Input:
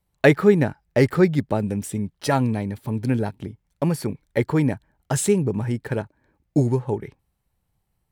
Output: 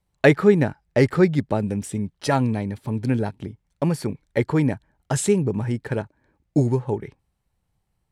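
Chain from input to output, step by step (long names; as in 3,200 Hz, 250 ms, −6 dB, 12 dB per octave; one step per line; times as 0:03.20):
low-pass filter 10,000 Hz 12 dB per octave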